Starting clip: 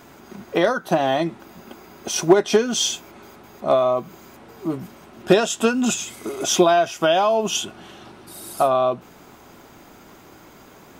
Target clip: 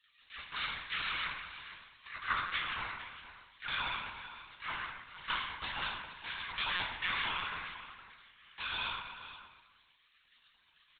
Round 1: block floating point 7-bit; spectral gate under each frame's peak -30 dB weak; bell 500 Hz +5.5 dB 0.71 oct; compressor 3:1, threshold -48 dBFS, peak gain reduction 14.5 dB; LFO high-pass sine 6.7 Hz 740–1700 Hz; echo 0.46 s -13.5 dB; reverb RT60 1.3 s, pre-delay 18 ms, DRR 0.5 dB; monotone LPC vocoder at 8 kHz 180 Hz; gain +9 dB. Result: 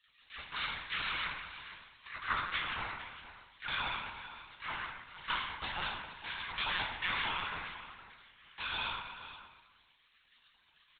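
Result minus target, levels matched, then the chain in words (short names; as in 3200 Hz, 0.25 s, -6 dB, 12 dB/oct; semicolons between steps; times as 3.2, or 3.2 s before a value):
500 Hz band +2.5 dB
block floating point 7-bit; spectral gate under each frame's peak -30 dB weak; bell 500 Hz -5.5 dB 0.71 oct; compressor 3:1, threshold -48 dBFS, peak gain reduction 14 dB; LFO high-pass sine 6.7 Hz 740–1700 Hz; echo 0.46 s -13.5 dB; reverb RT60 1.3 s, pre-delay 18 ms, DRR 0.5 dB; monotone LPC vocoder at 8 kHz 180 Hz; gain +9 dB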